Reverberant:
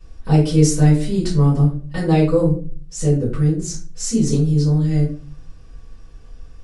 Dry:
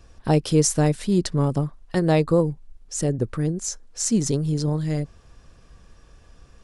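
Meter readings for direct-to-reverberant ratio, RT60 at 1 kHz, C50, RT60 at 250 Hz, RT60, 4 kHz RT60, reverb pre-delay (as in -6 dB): -8.0 dB, 0.35 s, 7.0 dB, 0.60 s, 0.40 s, 0.30 s, 4 ms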